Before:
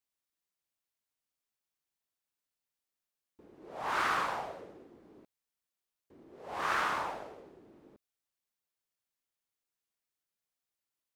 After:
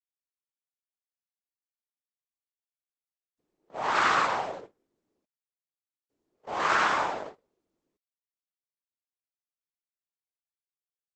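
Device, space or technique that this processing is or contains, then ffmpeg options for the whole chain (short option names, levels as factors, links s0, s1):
video call: -af "highpass=f=110:p=1,dynaudnorm=f=140:g=13:m=2.51,agate=range=0.0282:threshold=0.0126:ratio=16:detection=peak" -ar 48000 -c:a libopus -b:a 12k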